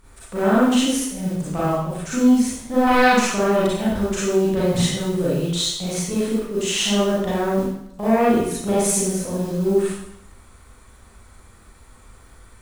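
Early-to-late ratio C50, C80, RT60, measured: -3.0 dB, 2.0 dB, 0.75 s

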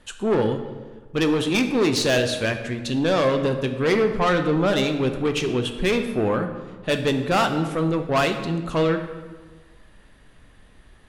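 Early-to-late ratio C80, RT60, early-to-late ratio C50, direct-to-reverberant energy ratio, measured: 10.5 dB, 1.4 s, 8.5 dB, 6.0 dB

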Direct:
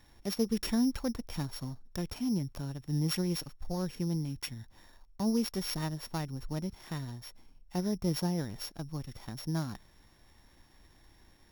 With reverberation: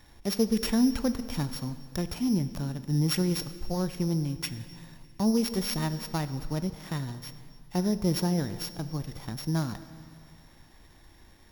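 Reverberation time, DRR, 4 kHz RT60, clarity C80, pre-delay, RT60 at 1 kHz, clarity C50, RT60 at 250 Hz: 2.4 s, 11.5 dB, 2.2 s, 13.5 dB, 6 ms, 2.4 s, 12.5 dB, 2.3 s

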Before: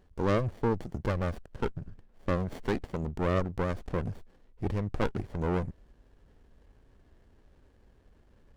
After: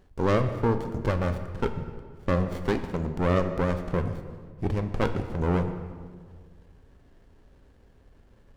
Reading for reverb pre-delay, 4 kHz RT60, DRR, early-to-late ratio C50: 3 ms, 1.2 s, 7.0 dB, 9.5 dB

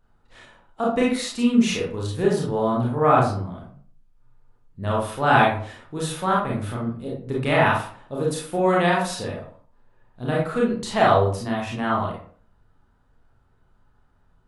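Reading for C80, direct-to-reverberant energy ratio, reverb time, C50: 8.5 dB, -4.5 dB, 0.50 s, 2.5 dB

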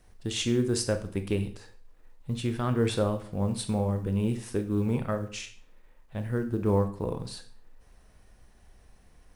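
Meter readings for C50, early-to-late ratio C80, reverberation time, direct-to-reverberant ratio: 11.5 dB, 15.5 dB, 0.50 s, 7.0 dB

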